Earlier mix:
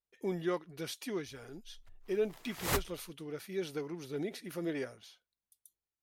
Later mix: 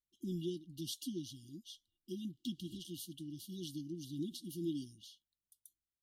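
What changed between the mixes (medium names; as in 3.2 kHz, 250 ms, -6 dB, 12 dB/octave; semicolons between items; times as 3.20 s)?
background: add band-pass filter 600 Hz, Q 2.7; master: add brick-wall FIR band-stop 360–2800 Hz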